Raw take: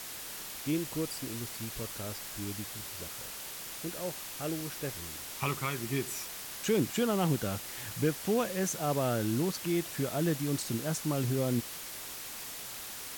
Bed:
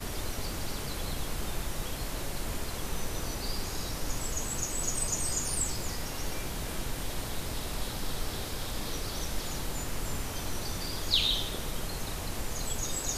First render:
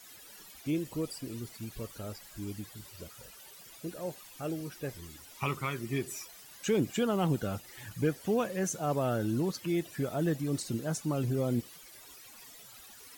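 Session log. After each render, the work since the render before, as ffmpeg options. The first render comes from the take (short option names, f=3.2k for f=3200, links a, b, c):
-af "afftdn=nr=15:nf=-43"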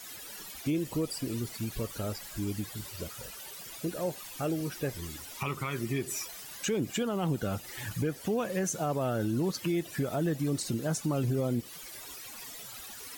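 -filter_complex "[0:a]asplit=2[a][b];[b]acompressor=threshold=-38dB:ratio=6,volume=2.5dB[c];[a][c]amix=inputs=2:normalize=0,alimiter=limit=-22dB:level=0:latency=1:release=96"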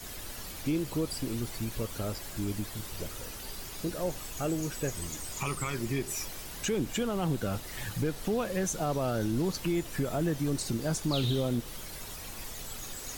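-filter_complex "[1:a]volume=-10dB[a];[0:a][a]amix=inputs=2:normalize=0"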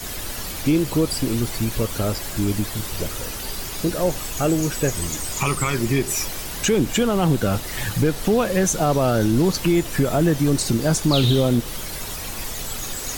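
-af "volume=11.5dB"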